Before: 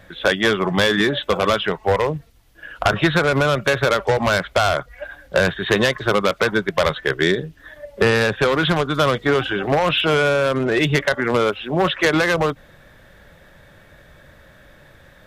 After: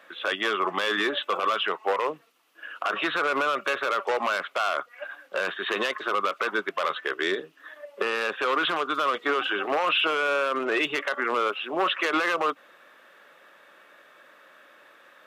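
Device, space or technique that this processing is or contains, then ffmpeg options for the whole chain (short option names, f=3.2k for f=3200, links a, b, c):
laptop speaker: -af "highpass=f=290:w=0.5412,highpass=f=290:w=1.3066,equalizer=f=1.2k:t=o:w=0.53:g=11,equalizer=f=2.7k:t=o:w=0.42:g=8,alimiter=limit=-8dB:level=0:latency=1:release=22,volume=-7dB"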